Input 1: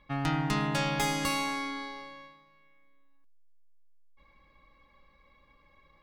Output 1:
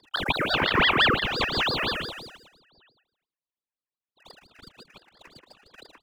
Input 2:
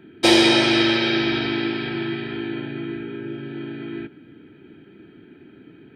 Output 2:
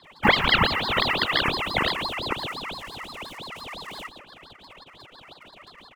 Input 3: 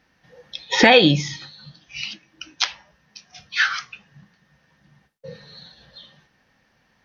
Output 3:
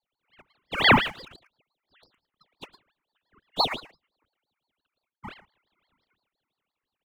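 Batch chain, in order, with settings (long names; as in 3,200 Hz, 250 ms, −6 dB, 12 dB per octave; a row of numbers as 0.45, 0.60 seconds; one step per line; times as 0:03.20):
three sine waves on the formant tracks
Butterworth low-pass 2,500 Hz 48 dB per octave
tilt shelving filter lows +7 dB, about 1,300 Hz
leveller curve on the samples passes 2
speech leveller within 4 dB 0.5 s
linear-phase brick-wall high-pass 470 Hz
phaser with its sweep stopped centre 700 Hz, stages 8
single-tap delay 111 ms −14 dB
ring modulator whose carrier an LFO sweeps 1,500 Hz, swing 80%, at 5.8 Hz
loudness normalisation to −23 LKFS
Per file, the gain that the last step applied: +7.0, +3.0, −2.5 decibels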